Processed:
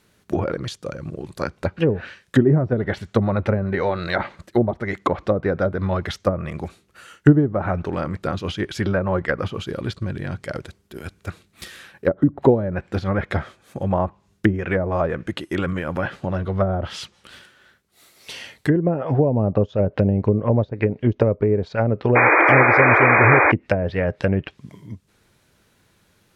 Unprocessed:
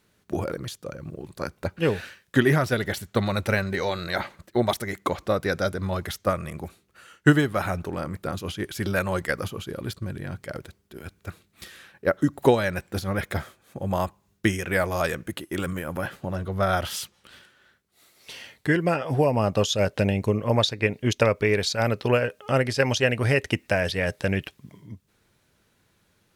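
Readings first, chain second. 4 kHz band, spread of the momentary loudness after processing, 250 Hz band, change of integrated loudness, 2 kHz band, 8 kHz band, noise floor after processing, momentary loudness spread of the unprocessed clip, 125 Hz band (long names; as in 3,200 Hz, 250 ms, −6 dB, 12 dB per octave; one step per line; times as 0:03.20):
−5.5 dB, 20 LU, +5.5 dB, +5.0 dB, +6.5 dB, can't be measured, −62 dBFS, 16 LU, +5.5 dB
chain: treble cut that deepens with the level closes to 480 Hz, closed at −18.5 dBFS
sound drawn into the spectrogram noise, 0:22.15–0:23.52, 290–2,500 Hz −20 dBFS
level +5.5 dB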